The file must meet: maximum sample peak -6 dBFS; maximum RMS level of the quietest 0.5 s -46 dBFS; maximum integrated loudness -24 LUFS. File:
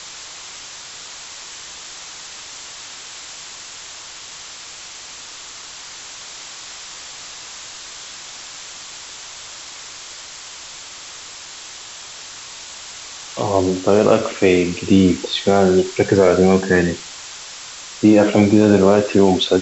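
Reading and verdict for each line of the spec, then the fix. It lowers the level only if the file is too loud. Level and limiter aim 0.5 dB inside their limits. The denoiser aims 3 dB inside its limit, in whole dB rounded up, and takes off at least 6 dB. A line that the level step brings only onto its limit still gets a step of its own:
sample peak -2.0 dBFS: fail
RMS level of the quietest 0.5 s -36 dBFS: fail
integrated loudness -15.0 LUFS: fail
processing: denoiser 6 dB, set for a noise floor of -36 dBFS; gain -9.5 dB

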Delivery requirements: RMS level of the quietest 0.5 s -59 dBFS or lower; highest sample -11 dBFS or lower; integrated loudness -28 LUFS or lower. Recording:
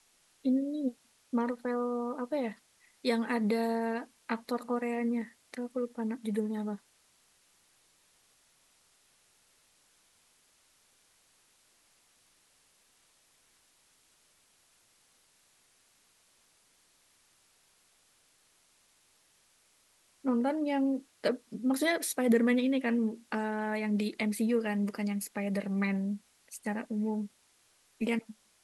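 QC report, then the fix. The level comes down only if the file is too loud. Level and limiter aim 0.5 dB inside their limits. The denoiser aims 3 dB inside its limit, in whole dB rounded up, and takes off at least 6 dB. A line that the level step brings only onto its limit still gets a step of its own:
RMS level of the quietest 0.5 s -68 dBFS: OK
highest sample -16.0 dBFS: OK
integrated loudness -32.5 LUFS: OK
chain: none

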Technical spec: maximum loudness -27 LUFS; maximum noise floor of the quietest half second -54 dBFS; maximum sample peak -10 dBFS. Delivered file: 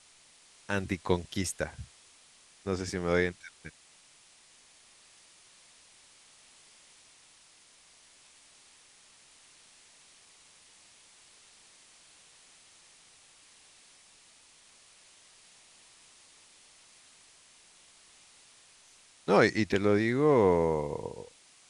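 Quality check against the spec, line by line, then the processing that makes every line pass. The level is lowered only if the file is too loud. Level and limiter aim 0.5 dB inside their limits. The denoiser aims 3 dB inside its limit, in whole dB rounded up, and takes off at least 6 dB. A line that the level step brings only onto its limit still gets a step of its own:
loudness -28.5 LUFS: OK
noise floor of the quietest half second -60 dBFS: OK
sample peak -8.5 dBFS: fail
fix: limiter -10.5 dBFS

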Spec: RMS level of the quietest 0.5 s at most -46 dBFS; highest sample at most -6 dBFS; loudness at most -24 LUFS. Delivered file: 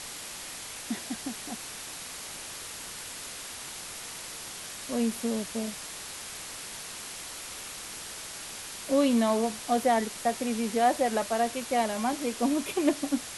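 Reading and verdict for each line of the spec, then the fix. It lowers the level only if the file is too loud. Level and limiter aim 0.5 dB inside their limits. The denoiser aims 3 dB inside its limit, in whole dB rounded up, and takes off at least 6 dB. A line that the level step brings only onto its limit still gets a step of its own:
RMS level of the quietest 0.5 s -41 dBFS: fail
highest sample -11.5 dBFS: OK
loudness -31.0 LUFS: OK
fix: denoiser 8 dB, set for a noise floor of -41 dBFS

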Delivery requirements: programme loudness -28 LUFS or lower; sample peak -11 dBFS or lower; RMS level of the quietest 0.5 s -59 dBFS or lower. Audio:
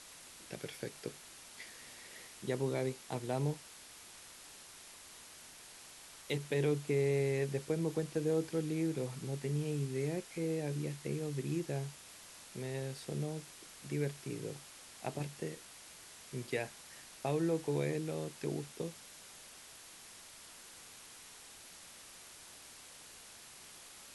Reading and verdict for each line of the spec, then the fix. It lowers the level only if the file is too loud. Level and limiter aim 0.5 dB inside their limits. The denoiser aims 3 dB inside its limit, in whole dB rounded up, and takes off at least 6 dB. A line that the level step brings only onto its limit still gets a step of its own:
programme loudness -38.0 LUFS: OK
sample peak -21.5 dBFS: OK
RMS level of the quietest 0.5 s -54 dBFS: fail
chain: denoiser 8 dB, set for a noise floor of -54 dBFS

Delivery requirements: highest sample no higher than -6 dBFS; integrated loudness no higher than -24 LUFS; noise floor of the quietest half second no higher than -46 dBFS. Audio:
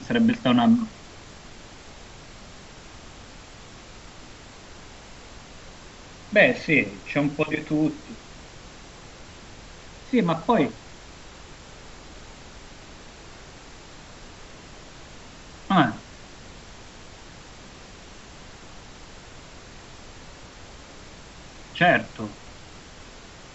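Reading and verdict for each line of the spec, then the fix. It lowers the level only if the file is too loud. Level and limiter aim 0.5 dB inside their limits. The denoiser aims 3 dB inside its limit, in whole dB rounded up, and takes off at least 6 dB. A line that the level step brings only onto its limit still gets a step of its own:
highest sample -5.0 dBFS: fail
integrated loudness -22.5 LUFS: fail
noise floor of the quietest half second -44 dBFS: fail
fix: denoiser 6 dB, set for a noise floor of -44 dBFS; gain -2 dB

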